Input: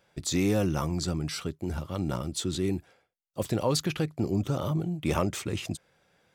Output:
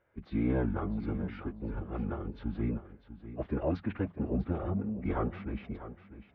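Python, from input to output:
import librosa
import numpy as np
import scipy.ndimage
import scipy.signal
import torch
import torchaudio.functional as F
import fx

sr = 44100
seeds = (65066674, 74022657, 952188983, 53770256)

y = scipy.signal.sosfilt(scipy.signal.butter(4, 2200.0, 'lowpass', fs=sr, output='sos'), x)
y = fx.pitch_keep_formants(y, sr, semitones=-8.5)
y = fx.echo_feedback(y, sr, ms=647, feedback_pct=22, wet_db=-13.0)
y = y * 10.0 ** (-3.5 / 20.0)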